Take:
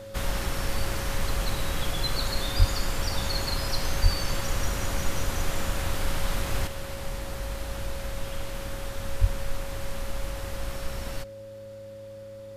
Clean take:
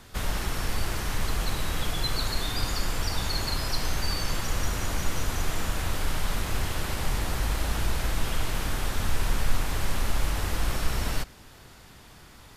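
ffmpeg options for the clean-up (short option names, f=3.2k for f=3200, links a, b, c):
-filter_complex "[0:a]bandreject=f=104.6:t=h:w=4,bandreject=f=209.2:t=h:w=4,bandreject=f=313.8:t=h:w=4,bandreject=f=418.4:t=h:w=4,bandreject=f=523:t=h:w=4,bandreject=f=550:w=30,asplit=3[a][b][c];[a]afade=t=out:st=2.58:d=0.02[d];[b]highpass=f=140:w=0.5412,highpass=f=140:w=1.3066,afade=t=in:st=2.58:d=0.02,afade=t=out:st=2.7:d=0.02[e];[c]afade=t=in:st=2.7:d=0.02[f];[d][e][f]amix=inputs=3:normalize=0,asplit=3[g][h][i];[g]afade=t=out:st=4.02:d=0.02[j];[h]highpass=f=140:w=0.5412,highpass=f=140:w=1.3066,afade=t=in:st=4.02:d=0.02,afade=t=out:st=4.14:d=0.02[k];[i]afade=t=in:st=4.14:d=0.02[l];[j][k][l]amix=inputs=3:normalize=0,asplit=3[m][n][o];[m]afade=t=out:st=9.2:d=0.02[p];[n]highpass=f=140:w=0.5412,highpass=f=140:w=1.3066,afade=t=in:st=9.2:d=0.02,afade=t=out:st=9.32:d=0.02[q];[o]afade=t=in:st=9.32:d=0.02[r];[p][q][r]amix=inputs=3:normalize=0,asetnsamples=n=441:p=0,asendcmd='6.67 volume volume 6.5dB',volume=0dB"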